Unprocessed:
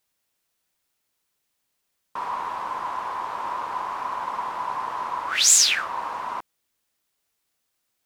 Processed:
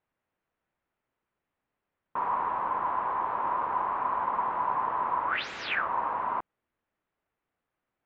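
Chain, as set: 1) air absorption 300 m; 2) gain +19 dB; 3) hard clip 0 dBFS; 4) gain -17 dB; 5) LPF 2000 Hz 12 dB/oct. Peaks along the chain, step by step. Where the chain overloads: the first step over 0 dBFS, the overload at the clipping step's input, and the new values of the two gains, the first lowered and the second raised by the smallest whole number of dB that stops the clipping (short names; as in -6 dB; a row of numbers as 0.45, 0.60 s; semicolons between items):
-15.0, +4.0, 0.0, -17.0, -17.5 dBFS; step 2, 4.0 dB; step 2 +15 dB, step 4 -13 dB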